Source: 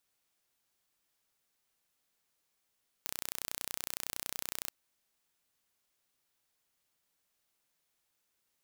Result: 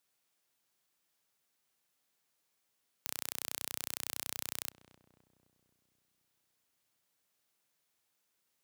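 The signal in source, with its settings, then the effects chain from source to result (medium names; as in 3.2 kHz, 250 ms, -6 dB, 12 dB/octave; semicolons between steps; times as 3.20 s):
pulse train 30.8 per s, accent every 0, -9.5 dBFS 1.64 s
high-pass 91 Hz 12 dB/octave; filtered feedback delay 260 ms, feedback 62%, low-pass 1 kHz, level -12.5 dB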